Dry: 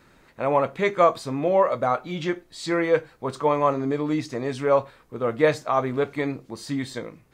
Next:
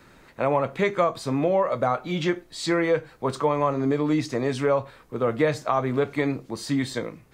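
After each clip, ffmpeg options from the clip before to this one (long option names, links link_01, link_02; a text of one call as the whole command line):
ffmpeg -i in.wav -filter_complex "[0:a]acrossover=split=170[link_01][link_02];[link_02]acompressor=threshold=-23dB:ratio=4[link_03];[link_01][link_03]amix=inputs=2:normalize=0,volume=3.5dB" out.wav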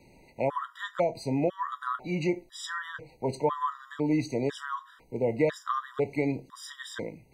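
ffmpeg -i in.wav -af "afftfilt=real='re*gt(sin(2*PI*1*pts/sr)*(1-2*mod(floor(b*sr/1024/970),2)),0)':imag='im*gt(sin(2*PI*1*pts/sr)*(1-2*mod(floor(b*sr/1024/970),2)),0)':win_size=1024:overlap=0.75,volume=-3dB" out.wav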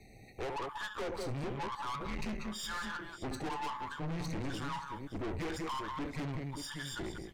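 ffmpeg -i in.wav -af "afreqshift=-140,aecho=1:1:69|189|575:0.211|0.316|0.15,aeval=exprs='(tanh(79.4*val(0)+0.4)-tanh(0.4))/79.4':channel_layout=same,volume=2dB" out.wav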